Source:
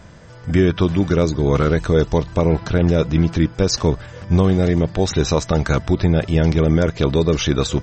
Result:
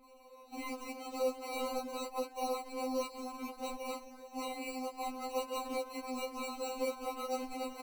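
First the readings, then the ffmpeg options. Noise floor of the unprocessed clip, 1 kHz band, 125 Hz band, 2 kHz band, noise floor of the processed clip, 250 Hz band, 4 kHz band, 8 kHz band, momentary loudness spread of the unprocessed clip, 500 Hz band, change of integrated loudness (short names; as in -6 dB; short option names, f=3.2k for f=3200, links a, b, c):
-40 dBFS, -10.0 dB, under -40 dB, -18.0 dB, -57 dBFS, -25.0 dB, -18.5 dB, -17.5 dB, 3 LU, -19.0 dB, -21.5 dB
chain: -filter_complex "[0:a]acrossover=split=210|1100[a][b][c];[b]adelay=40[d];[a]adelay=280[e];[e][d][c]amix=inputs=3:normalize=0,asoftclip=type=tanh:threshold=-18.5dB,asplit=3[f][g][h];[f]bandpass=f=730:t=q:w=8,volume=0dB[i];[g]bandpass=f=1.09k:t=q:w=8,volume=-6dB[j];[h]bandpass=f=2.44k:t=q:w=8,volume=-9dB[k];[i][j][k]amix=inputs=3:normalize=0,equalizer=f=1.3k:w=1.5:g=3,acrusher=samples=26:mix=1:aa=0.000001,lowshelf=f=360:g=11,afftfilt=real='re*3.46*eq(mod(b,12),0)':imag='im*3.46*eq(mod(b,12),0)':win_size=2048:overlap=0.75"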